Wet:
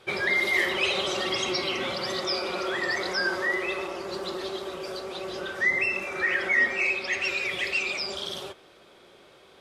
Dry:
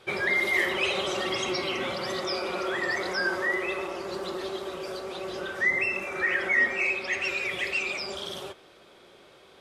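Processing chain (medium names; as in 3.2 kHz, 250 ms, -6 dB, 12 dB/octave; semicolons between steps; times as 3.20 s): dynamic bell 4.4 kHz, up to +5 dB, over -46 dBFS, Q 1.4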